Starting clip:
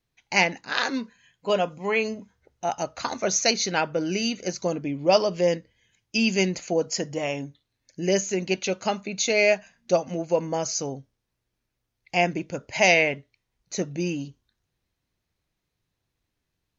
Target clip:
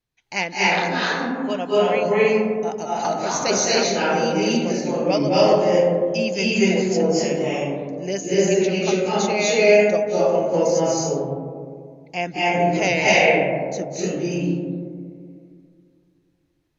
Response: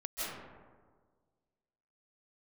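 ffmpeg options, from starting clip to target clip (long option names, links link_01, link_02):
-filter_complex "[1:a]atrim=start_sample=2205,asetrate=29547,aresample=44100[link_01];[0:a][link_01]afir=irnorm=-1:irlink=0,volume=-1dB"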